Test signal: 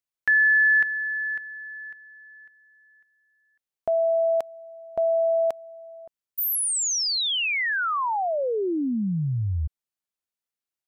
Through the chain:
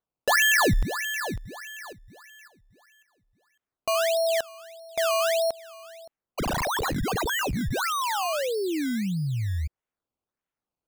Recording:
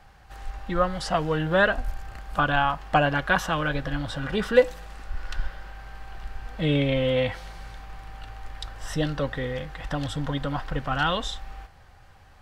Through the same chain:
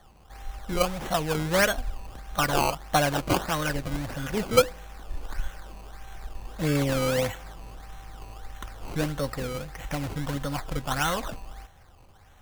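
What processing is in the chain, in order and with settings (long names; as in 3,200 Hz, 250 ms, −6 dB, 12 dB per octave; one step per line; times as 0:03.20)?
sample-and-hold swept by an LFO 17×, swing 100% 1.6 Hz
level −2 dB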